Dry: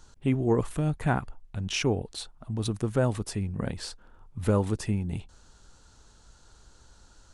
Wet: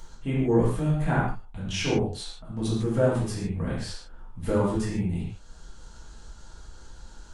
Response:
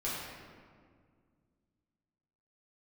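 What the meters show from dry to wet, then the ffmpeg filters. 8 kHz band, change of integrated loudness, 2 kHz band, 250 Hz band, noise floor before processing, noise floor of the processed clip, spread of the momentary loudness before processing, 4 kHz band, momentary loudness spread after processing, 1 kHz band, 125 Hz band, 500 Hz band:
−0.5 dB, +2.0 dB, +2.0 dB, +2.5 dB, −57 dBFS, −47 dBFS, 13 LU, +0.5 dB, 14 LU, +2.0 dB, +1.5 dB, +3.0 dB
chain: -filter_complex "[0:a]acompressor=mode=upward:threshold=-42dB:ratio=2.5[link_01];[1:a]atrim=start_sample=2205,afade=type=out:start_time=0.28:duration=0.01,atrim=end_sample=12789,asetrate=61740,aresample=44100[link_02];[link_01][link_02]afir=irnorm=-1:irlink=0"

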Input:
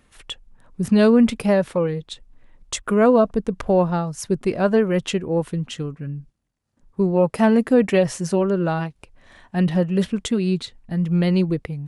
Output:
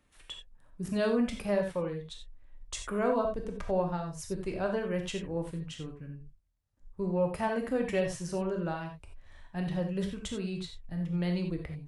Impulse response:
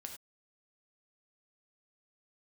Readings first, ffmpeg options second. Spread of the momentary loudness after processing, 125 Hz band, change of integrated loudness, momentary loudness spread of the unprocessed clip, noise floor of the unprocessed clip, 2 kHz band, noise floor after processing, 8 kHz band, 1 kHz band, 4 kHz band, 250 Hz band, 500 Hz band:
14 LU, −12.5 dB, −13.0 dB, 16 LU, −64 dBFS, −10.0 dB, −62 dBFS, −10.5 dB, −10.5 dB, −10.0 dB, −14.0 dB, −12.0 dB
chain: -filter_complex "[0:a]asubboost=boost=6:cutoff=84,acrossover=split=210[link_01][link_02];[link_01]asoftclip=type=tanh:threshold=-23.5dB[link_03];[link_03][link_02]amix=inputs=2:normalize=0[link_04];[1:a]atrim=start_sample=2205,asetrate=48510,aresample=44100[link_05];[link_04][link_05]afir=irnorm=-1:irlink=0,volume=-5.5dB"

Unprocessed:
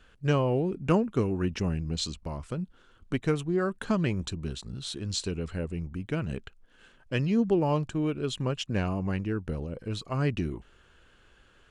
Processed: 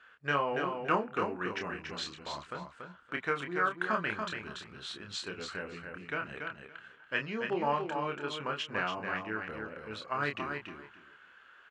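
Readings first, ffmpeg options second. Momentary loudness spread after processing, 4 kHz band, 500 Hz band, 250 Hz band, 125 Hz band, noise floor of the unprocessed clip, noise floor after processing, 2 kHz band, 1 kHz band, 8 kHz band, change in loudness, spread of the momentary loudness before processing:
13 LU, −3.0 dB, −6.0 dB, −11.5 dB, −16.5 dB, −60 dBFS, −58 dBFS, +6.0 dB, +4.0 dB, −10.0 dB, −5.0 dB, 11 LU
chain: -filter_complex "[0:a]bandpass=frequency=1500:width_type=q:width=1.6:csg=0,asplit=2[link_01][link_02];[link_02]adelay=28,volume=-5dB[link_03];[link_01][link_03]amix=inputs=2:normalize=0,aecho=1:1:284|568|852:0.531|0.0956|0.0172,volume=5.5dB"

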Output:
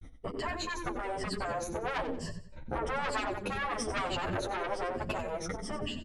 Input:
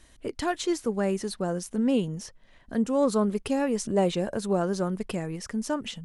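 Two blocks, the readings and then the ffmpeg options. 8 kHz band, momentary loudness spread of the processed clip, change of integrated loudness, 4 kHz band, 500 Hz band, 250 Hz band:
−6.5 dB, 5 LU, −7.5 dB, −2.0 dB, −8.5 dB, −13.5 dB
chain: -filter_complex "[0:a]afftfilt=real='re*pow(10,16/40*sin(2*PI*(1.4*log(max(b,1)*sr/1024/100)/log(2)-(-1.1)*(pts-256)/sr)))':imag='im*pow(10,16/40*sin(2*PI*(1.4*log(max(b,1)*sr/1024/100)/log(2)-(-1.1)*(pts-256)/sr)))':win_size=1024:overlap=0.75,agate=range=-56dB:threshold=-49dB:ratio=16:detection=peak,asplit=2[link_01][link_02];[link_02]acompressor=threshold=-31dB:ratio=16,volume=-3dB[link_03];[link_01][link_03]amix=inputs=2:normalize=0,asplit=2[link_04][link_05];[link_05]adelay=12,volume=-9dB[link_06];[link_04][link_06]amix=inputs=2:normalize=0,dynaudnorm=framelen=270:gausssize=7:maxgain=10dB,lowpass=frequency=1400:poles=1,lowshelf=frequency=430:gain=11,asoftclip=type=tanh:threshold=-14dB,adynamicequalizer=threshold=0.0158:dfrequency=900:dqfactor=0.79:tfrequency=900:tqfactor=0.79:attack=5:release=100:ratio=0.375:range=2.5:mode=cutabove:tftype=bell,aecho=1:1:92|184|276:0.251|0.0804|0.0257,afftfilt=real='re*lt(hypot(re,im),0.316)':imag='im*lt(hypot(re,im),0.316)':win_size=1024:overlap=0.75,asplit=2[link_07][link_08];[link_08]adelay=8.7,afreqshift=0.94[link_09];[link_07][link_09]amix=inputs=2:normalize=1"

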